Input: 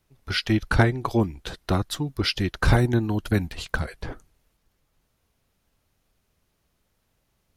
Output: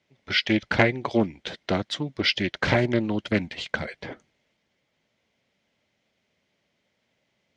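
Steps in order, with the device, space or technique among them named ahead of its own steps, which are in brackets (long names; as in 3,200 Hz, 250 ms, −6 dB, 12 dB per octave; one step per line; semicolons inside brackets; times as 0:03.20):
full-range speaker at full volume (highs frequency-modulated by the lows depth 0.54 ms; loudspeaker in its box 150–6,500 Hz, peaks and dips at 220 Hz +4 dB, 580 Hz +6 dB, 1,200 Hz −5 dB, 2,100 Hz +10 dB, 3,200 Hz +6 dB)
level −1 dB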